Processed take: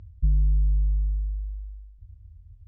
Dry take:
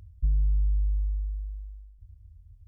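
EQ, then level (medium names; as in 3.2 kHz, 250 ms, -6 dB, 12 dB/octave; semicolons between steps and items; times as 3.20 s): dynamic bell 160 Hz, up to +6 dB, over -51 dBFS, Q 3.1; distance through air 130 m; peaking EQ 220 Hz +3.5 dB 1.9 oct; +2.5 dB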